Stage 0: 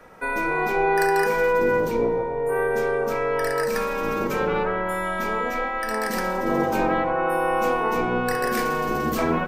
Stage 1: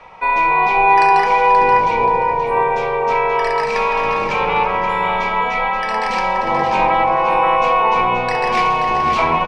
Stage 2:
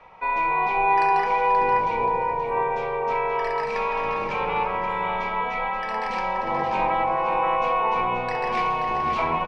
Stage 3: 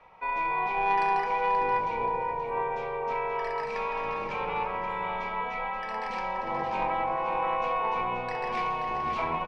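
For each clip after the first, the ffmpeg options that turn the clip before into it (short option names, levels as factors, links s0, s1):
-filter_complex "[0:a]firequalizer=gain_entry='entry(130,0);entry(260,-9);entry(960,12);entry(1500,-6);entry(2300,11);entry(13000,-29)':delay=0.05:min_phase=1,asplit=2[s0][s1];[s1]adelay=529,lowpass=f=4800:p=1,volume=0.501,asplit=2[s2][s3];[s3]adelay=529,lowpass=f=4800:p=1,volume=0.32,asplit=2[s4][s5];[s5]adelay=529,lowpass=f=4800:p=1,volume=0.32,asplit=2[s6][s7];[s7]adelay=529,lowpass=f=4800:p=1,volume=0.32[s8];[s0][s2][s4][s6][s8]amix=inputs=5:normalize=0,volume=1.41"
-af "highshelf=f=5000:g=-10,volume=0.422"
-af "aeval=exprs='0.355*(cos(1*acos(clip(val(0)/0.355,-1,1)))-cos(1*PI/2))+0.0282*(cos(2*acos(clip(val(0)/0.355,-1,1)))-cos(2*PI/2))+0.0282*(cos(3*acos(clip(val(0)/0.355,-1,1)))-cos(3*PI/2))+0.00501*(cos(5*acos(clip(val(0)/0.355,-1,1)))-cos(5*PI/2))':c=same,volume=0.596"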